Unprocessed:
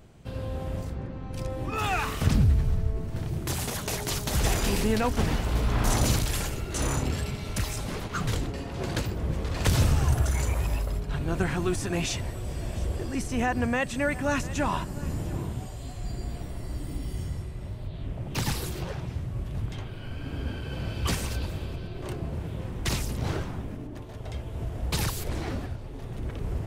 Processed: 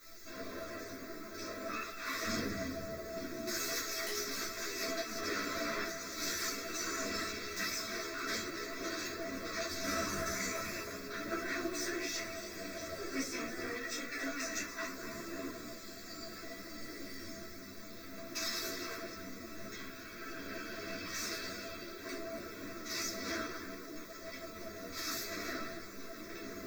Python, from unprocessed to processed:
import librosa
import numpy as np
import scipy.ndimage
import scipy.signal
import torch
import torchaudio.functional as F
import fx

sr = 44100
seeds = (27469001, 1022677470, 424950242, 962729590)

p1 = fx.lower_of_two(x, sr, delay_ms=2.7)
p2 = scipy.signal.sosfilt(scipy.signal.butter(2, 490.0, 'highpass', fs=sr, output='sos'), p1)
p3 = fx.over_compress(p2, sr, threshold_db=-35.0, ratio=-0.5)
p4 = fx.dmg_noise_colour(p3, sr, seeds[0], colour='white', level_db=-53.0)
p5 = fx.fixed_phaser(p4, sr, hz=3000.0, stages=6)
p6 = fx.comb_fb(p5, sr, f0_hz=660.0, decay_s=0.18, harmonics='all', damping=0.0, mix_pct=80)
p7 = (np.mod(10.0 ** (36.5 / 20.0) * p6 + 1.0, 2.0) - 1.0) / 10.0 ** (36.5 / 20.0)
p8 = p7 + fx.echo_single(p7, sr, ms=281, db=-11.5, dry=0)
p9 = fx.room_shoebox(p8, sr, seeds[1], volume_m3=270.0, walls='furnished', distance_m=2.9)
p10 = fx.ensemble(p9, sr)
y = p10 * 10.0 ** (10.5 / 20.0)